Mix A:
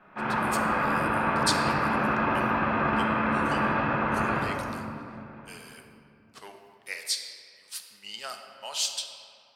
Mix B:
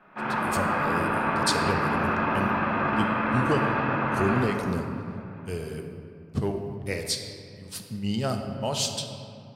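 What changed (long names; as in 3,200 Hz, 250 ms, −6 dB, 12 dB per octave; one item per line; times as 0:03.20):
speech: remove high-pass filter 1,300 Hz 12 dB per octave
master: add parametric band 73 Hz −10.5 dB 0.45 octaves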